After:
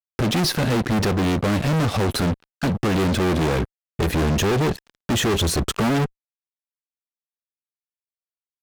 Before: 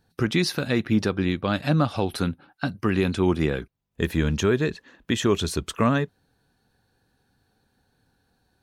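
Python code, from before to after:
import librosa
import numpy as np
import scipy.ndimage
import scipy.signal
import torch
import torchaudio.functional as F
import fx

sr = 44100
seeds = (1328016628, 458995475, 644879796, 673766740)

y = fx.tilt_shelf(x, sr, db=4.5, hz=720.0)
y = fx.fuzz(y, sr, gain_db=35.0, gate_db=-44.0)
y = y * librosa.db_to_amplitude(-5.0)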